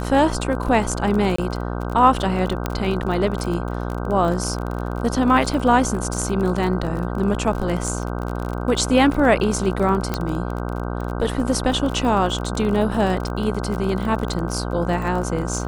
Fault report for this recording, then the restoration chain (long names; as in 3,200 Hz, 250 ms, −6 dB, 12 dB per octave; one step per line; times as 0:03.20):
mains buzz 60 Hz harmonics 26 −26 dBFS
surface crackle 35 per second −26 dBFS
0:01.36–0:01.38: drop-out 24 ms
0:02.66: click −8 dBFS
0:10.14: click −8 dBFS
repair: click removal
hum removal 60 Hz, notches 26
repair the gap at 0:01.36, 24 ms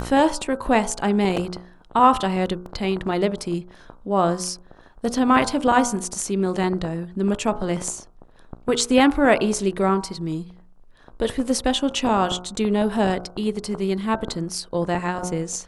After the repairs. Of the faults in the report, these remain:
0:02.66: click